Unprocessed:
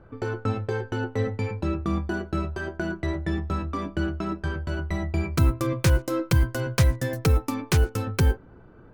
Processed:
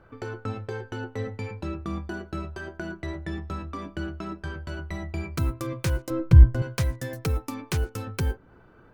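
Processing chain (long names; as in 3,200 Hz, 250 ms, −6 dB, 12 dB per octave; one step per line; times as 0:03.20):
0:06.10–0:06.62: RIAA equalisation playback
one half of a high-frequency compander encoder only
level −6 dB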